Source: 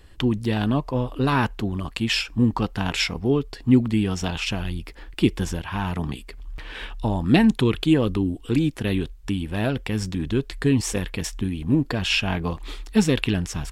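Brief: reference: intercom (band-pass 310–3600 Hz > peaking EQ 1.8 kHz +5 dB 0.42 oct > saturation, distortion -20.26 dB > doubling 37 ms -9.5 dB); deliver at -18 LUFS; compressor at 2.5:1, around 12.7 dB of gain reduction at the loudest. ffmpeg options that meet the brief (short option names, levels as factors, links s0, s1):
-filter_complex "[0:a]acompressor=threshold=0.0251:ratio=2.5,highpass=310,lowpass=3600,equalizer=f=1800:t=o:w=0.42:g=5,asoftclip=threshold=0.0668,asplit=2[s0][s1];[s1]adelay=37,volume=0.335[s2];[s0][s2]amix=inputs=2:normalize=0,volume=8.91"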